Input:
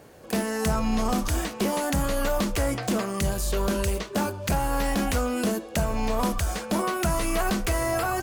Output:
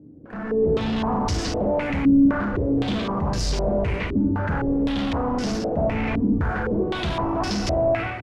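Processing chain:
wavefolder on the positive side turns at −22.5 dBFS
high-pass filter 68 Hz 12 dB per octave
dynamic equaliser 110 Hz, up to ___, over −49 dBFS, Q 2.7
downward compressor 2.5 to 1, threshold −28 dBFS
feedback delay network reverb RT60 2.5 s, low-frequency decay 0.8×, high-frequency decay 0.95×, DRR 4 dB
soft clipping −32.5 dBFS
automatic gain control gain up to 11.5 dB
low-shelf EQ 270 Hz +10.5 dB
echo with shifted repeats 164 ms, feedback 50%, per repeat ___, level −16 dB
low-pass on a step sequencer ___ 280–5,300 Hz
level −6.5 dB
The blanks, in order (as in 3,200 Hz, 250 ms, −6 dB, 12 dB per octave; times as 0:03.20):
+3 dB, −72 Hz, 3.9 Hz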